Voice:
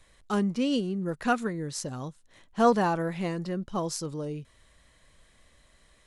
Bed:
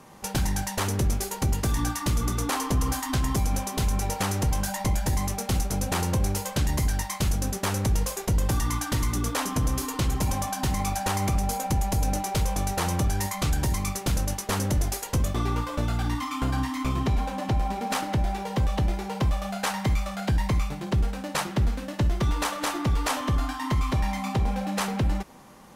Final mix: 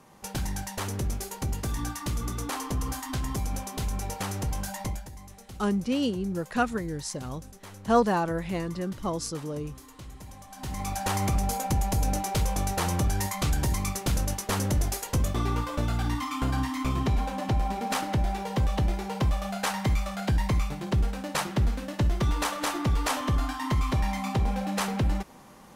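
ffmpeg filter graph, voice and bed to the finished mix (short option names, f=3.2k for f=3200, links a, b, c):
-filter_complex "[0:a]adelay=5300,volume=0dB[a];[1:a]volume=12.5dB,afade=t=out:st=4.83:d=0.26:silence=0.211349,afade=t=in:st=10.48:d=0.65:silence=0.125893[b];[a][b]amix=inputs=2:normalize=0"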